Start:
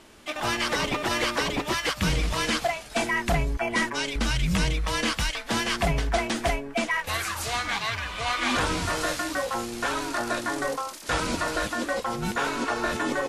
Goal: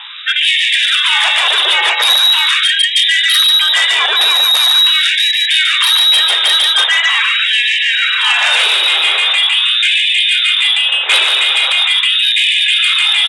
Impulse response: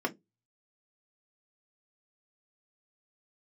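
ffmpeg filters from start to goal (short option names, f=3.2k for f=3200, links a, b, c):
-af "lowpass=f=3.3k:t=q:w=0.5098,lowpass=f=3.3k:t=q:w=0.6013,lowpass=f=3.3k:t=q:w=0.9,lowpass=f=3.3k:t=q:w=2.563,afreqshift=-3900,aeval=exprs='0.316*sin(PI/2*2.82*val(0)/0.316)':c=same,aecho=1:1:144:0.596,alimiter=level_in=13.5dB:limit=-1dB:release=50:level=0:latency=1,afftfilt=real='re*gte(b*sr/1024,310*pow(1700/310,0.5+0.5*sin(2*PI*0.42*pts/sr)))':imag='im*gte(b*sr/1024,310*pow(1700/310,0.5+0.5*sin(2*PI*0.42*pts/sr)))':win_size=1024:overlap=0.75,volume=-3.5dB"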